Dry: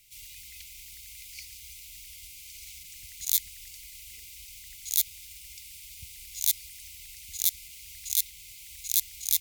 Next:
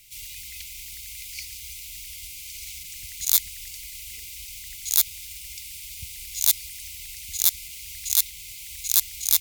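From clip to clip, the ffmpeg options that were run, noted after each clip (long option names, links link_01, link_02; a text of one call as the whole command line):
ffmpeg -i in.wav -af "acontrast=89" out.wav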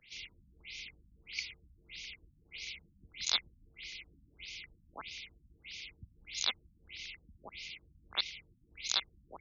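ffmpeg -i in.wav -filter_complex "[0:a]acrossover=split=160 5200:gain=0.178 1 0.0891[link_01][link_02][link_03];[link_01][link_02][link_03]amix=inputs=3:normalize=0,afftfilt=real='re*lt(b*sr/1024,280*pow(7100/280,0.5+0.5*sin(2*PI*1.6*pts/sr)))':imag='im*lt(b*sr/1024,280*pow(7100/280,0.5+0.5*sin(2*PI*1.6*pts/sr)))':win_size=1024:overlap=0.75,volume=1.5dB" out.wav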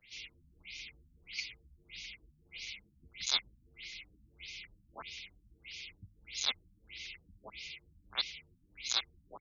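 ffmpeg -i in.wav -filter_complex "[0:a]asplit=2[link_01][link_02];[link_02]adelay=7.7,afreqshift=1.5[link_03];[link_01][link_03]amix=inputs=2:normalize=1,volume=2.5dB" out.wav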